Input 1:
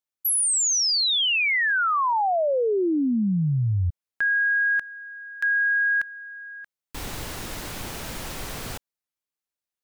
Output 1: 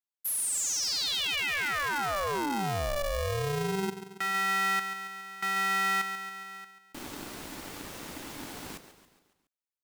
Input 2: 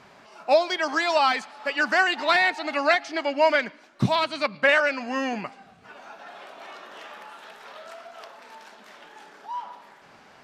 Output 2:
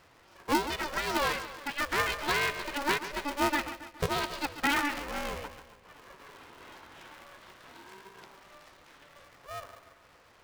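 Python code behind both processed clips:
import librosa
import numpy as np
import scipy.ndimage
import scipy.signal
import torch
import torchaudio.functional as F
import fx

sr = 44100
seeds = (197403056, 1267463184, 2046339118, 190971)

y = fx.echo_feedback(x, sr, ms=139, feedback_pct=51, wet_db=-12.0)
y = y * np.sign(np.sin(2.0 * np.pi * 290.0 * np.arange(len(y)) / sr))
y = F.gain(torch.from_numpy(y), -8.5).numpy()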